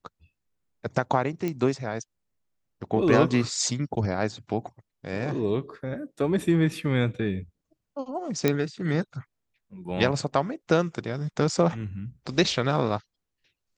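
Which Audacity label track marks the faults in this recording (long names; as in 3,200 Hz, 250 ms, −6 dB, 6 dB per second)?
1.480000	1.480000	click −16 dBFS
8.480000	8.480000	click −8 dBFS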